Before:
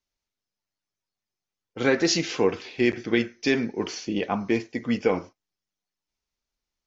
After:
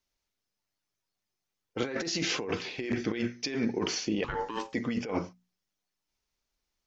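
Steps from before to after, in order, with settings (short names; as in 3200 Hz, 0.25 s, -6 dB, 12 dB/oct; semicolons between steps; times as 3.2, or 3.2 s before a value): notches 60/120/180/240 Hz; negative-ratio compressor -29 dBFS, ratio -1; 4.24–4.74 ring modulator 670 Hz; gain -2 dB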